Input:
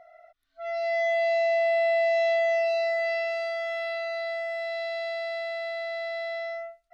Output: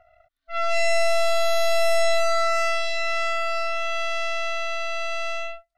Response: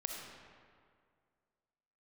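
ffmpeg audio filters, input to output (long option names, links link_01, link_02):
-af "atempo=1.2,aeval=exprs='0.126*(cos(1*acos(clip(val(0)/0.126,-1,1)))-cos(1*PI/2))+0.0631*(cos(4*acos(clip(val(0)/0.126,-1,1)))-cos(4*PI/2))+0.0158*(cos(5*acos(clip(val(0)/0.126,-1,1)))-cos(5*PI/2))+0.02*(cos(7*acos(clip(val(0)/0.126,-1,1)))-cos(7*PI/2))+0.0224*(cos(8*acos(clip(val(0)/0.126,-1,1)))-cos(8*PI/2))':channel_layout=same"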